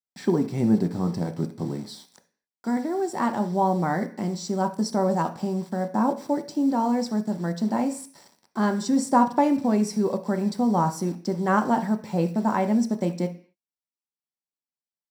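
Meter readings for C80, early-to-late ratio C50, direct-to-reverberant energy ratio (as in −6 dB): 18.0 dB, 13.5 dB, 5.5 dB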